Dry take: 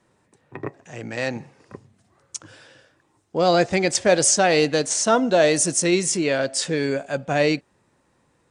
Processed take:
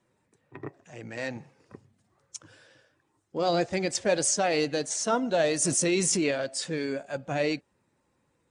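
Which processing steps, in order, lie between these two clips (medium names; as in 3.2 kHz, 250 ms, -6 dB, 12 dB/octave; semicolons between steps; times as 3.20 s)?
coarse spectral quantiser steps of 15 dB; 5.62–6.31 s: level flattener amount 70%; trim -7.5 dB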